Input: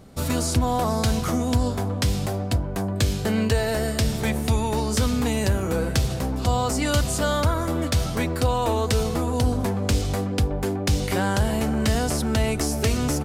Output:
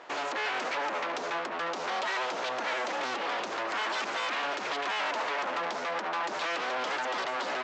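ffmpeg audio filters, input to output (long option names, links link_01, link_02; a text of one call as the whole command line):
ffmpeg -i in.wav -af "asetrate=76440,aresample=44100,aresample=16000,aeval=exprs='abs(val(0))':channel_layout=same,aresample=44100,alimiter=limit=-20dB:level=0:latency=1:release=71,asoftclip=type=tanh:threshold=-23dB,highpass=590,lowpass=3900,volume=6.5dB" out.wav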